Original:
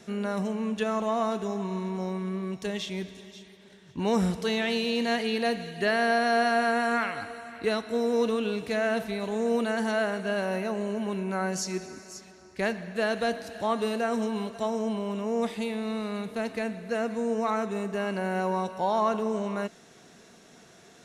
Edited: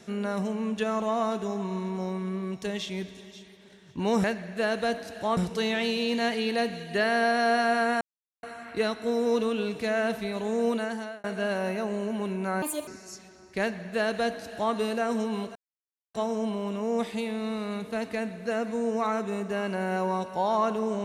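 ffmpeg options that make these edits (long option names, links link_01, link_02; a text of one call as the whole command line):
ffmpeg -i in.wav -filter_complex "[0:a]asplit=9[link_01][link_02][link_03][link_04][link_05][link_06][link_07][link_08][link_09];[link_01]atrim=end=4.242[link_10];[link_02]atrim=start=12.628:end=13.762[link_11];[link_03]atrim=start=4.238:end=6.88,asetpts=PTS-STARTPTS,afade=type=out:start_time=2.638:duration=0.004:curve=hsin[link_12];[link_04]atrim=start=6.88:end=7.3,asetpts=PTS-STARTPTS,volume=0[link_13];[link_05]atrim=start=7.3:end=10.11,asetpts=PTS-STARTPTS,afade=type=in:duration=0.004:curve=hsin,afade=type=out:start_time=2.28:duration=0.53[link_14];[link_06]atrim=start=10.11:end=11.494,asetpts=PTS-STARTPTS,afade=type=in:duration=0.004:curve=hsin[link_15];[link_07]atrim=start=11.49:end=11.9,asetpts=PTS-STARTPTS,asetrate=71001,aresample=44100,atrim=end_sample=11230,asetpts=PTS-STARTPTS[link_16];[link_08]atrim=start=11.896:end=14.58,asetpts=PTS-STARTPTS,afade=type=out:start_time=2.68:duration=0.004:curve=hsin,apad=pad_dur=0.59[link_17];[link_09]atrim=start=14.58,asetpts=PTS-STARTPTS,afade=type=in:duration=0.004:curve=hsin[link_18];[link_10][link_11]acrossfade=duration=0.004:curve1=hsin:curve2=hsin[link_19];[link_12][link_13][link_14][link_15]concat=n=4:v=0:a=1[link_20];[link_19][link_20]acrossfade=duration=0.004:curve1=hsin:curve2=hsin[link_21];[link_21][link_16]acrossfade=duration=0.004:curve1=hsin:curve2=hsin[link_22];[link_17][link_18]concat=n=2:v=0:a=1[link_23];[link_22][link_23]acrossfade=duration=0.004:curve1=hsin:curve2=hsin" out.wav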